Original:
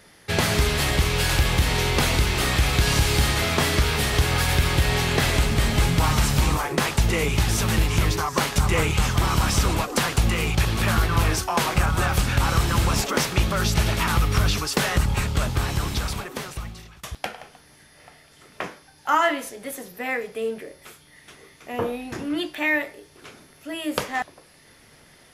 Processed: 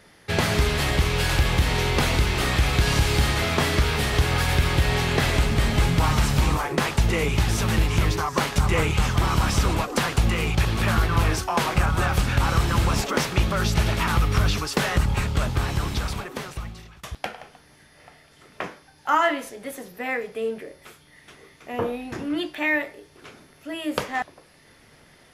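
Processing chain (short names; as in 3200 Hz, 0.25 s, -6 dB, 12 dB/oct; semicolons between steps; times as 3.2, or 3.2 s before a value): high shelf 5000 Hz -6 dB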